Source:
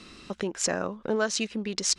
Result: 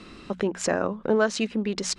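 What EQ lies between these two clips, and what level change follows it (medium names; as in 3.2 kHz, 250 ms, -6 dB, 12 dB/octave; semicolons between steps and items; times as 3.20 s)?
treble shelf 2.7 kHz -9.5 dB; peaking EQ 5.8 kHz -3 dB 0.39 oct; hum notches 60/120/180/240 Hz; +5.5 dB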